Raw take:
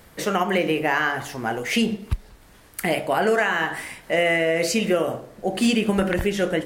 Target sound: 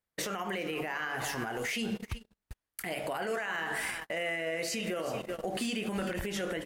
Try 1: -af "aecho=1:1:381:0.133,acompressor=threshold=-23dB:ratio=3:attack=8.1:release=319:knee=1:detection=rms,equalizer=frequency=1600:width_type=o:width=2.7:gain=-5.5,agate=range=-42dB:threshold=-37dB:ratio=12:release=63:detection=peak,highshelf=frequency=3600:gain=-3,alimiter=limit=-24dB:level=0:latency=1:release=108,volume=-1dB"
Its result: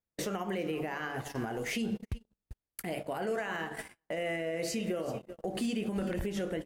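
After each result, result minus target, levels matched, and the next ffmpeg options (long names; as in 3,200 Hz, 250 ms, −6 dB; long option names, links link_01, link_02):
2,000 Hz band −4.0 dB; 8,000 Hz band −3.0 dB
-af "aecho=1:1:381:0.133,acompressor=threshold=-23dB:ratio=3:attack=8.1:release=319:knee=1:detection=rms,equalizer=frequency=1600:width_type=o:width=2.7:gain=3.5,agate=range=-42dB:threshold=-37dB:ratio=12:release=63:detection=peak,highshelf=frequency=3600:gain=-3,alimiter=limit=-24dB:level=0:latency=1:release=108,volume=-1dB"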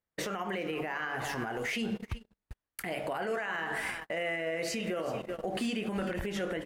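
8,000 Hz band −4.5 dB
-af "aecho=1:1:381:0.133,acompressor=threshold=-23dB:ratio=3:attack=8.1:release=319:knee=1:detection=rms,equalizer=frequency=1600:width_type=o:width=2.7:gain=3.5,agate=range=-42dB:threshold=-37dB:ratio=12:release=63:detection=peak,highshelf=frequency=3600:gain=6,alimiter=limit=-24dB:level=0:latency=1:release=108,volume=-1dB"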